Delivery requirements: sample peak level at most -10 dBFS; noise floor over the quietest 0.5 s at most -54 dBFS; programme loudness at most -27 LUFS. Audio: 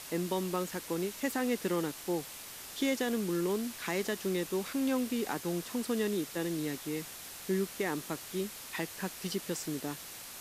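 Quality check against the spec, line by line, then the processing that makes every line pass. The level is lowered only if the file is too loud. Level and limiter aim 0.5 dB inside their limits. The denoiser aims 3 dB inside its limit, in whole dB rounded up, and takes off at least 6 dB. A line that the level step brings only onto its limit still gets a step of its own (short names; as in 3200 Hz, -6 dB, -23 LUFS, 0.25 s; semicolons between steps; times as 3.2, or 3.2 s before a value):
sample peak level -19.5 dBFS: OK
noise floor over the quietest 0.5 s -46 dBFS: fail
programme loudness -34.5 LUFS: OK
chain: denoiser 11 dB, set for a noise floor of -46 dBFS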